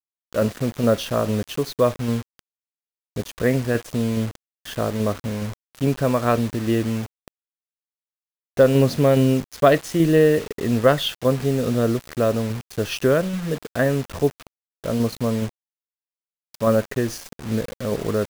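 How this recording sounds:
tremolo saw down 2.4 Hz, depth 35%
a quantiser's noise floor 6 bits, dither none

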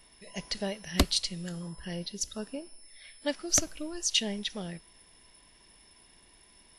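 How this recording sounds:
background noise floor −60 dBFS
spectral slope −2.5 dB per octave

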